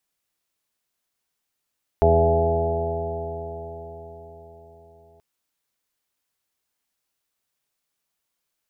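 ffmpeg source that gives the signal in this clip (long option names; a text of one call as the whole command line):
ffmpeg -f lavfi -i "aevalsrc='0.119*pow(10,-3*t/4.89)*sin(2*PI*82.03*t)+0.0531*pow(10,-3*t/4.89)*sin(2*PI*164.22*t)+0.0299*pow(10,-3*t/4.89)*sin(2*PI*246.75*t)+0.0211*pow(10,-3*t/4.89)*sin(2*PI*329.78*t)+0.133*pow(10,-3*t/4.89)*sin(2*PI*413.47*t)+0.0422*pow(10,-3*t/4.89)*sin(2*PI*497.99*t)+0.0282*pow(10,-3*t/4.89)*sin(2*PI*583.48*t)+0.141*pow(10,-3*t/4.89)*sin(2*PI*670.12*t)+0.0237*pow(10,-3*t/4.89)*sin(2*PI*758.05*t)+0.0562*pow(10,-3*t/4.89)*sin(2*PI*847.42*t)':duration=3.18:sample_rate=44100" out.wav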